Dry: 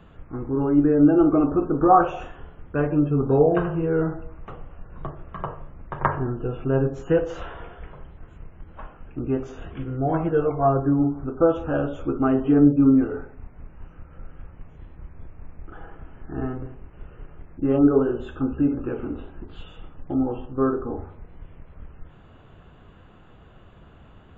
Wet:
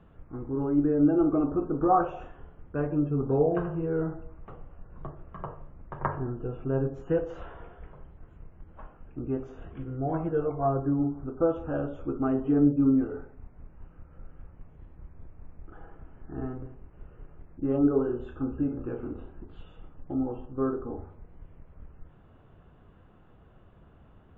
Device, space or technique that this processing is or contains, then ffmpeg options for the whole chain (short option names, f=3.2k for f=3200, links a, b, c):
through cloth: -filter_complex "[0:a]asettb=1/sr,asplit=3[a][b][c];[a]atrim=end=17.964[d];[b]atrim=start=17.96:end=19.33,asetpts=PTS-STARTPTS,afade=t=in:d=0.004:c=qsin,afade=t=out:st=1.366:d=0.004:c=qsin,asplit=2[e][f];[f]adelay=33,volume=-8dB[g];[e][g]amix=inputs=2:normalize=0,atrim=end_sample=60417[h];[c]atrim=start=19.326[i];[d][h]acrossfade=d=0.004:c1=hsin:c2=qsin[j];[j][i]acrossfade=d=0.004:c1=qsin:c2=hsin,highshelf=f=2.4k:g=-12,volume=-6dB"